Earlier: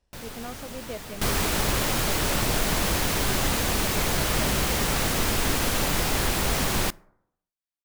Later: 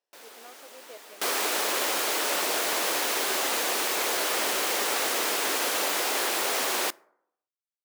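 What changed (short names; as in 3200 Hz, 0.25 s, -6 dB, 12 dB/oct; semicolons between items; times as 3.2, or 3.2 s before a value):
speech -9.5 dB; first sound -6.5 dB; master: add HPF 360 Hz 24 dB/oct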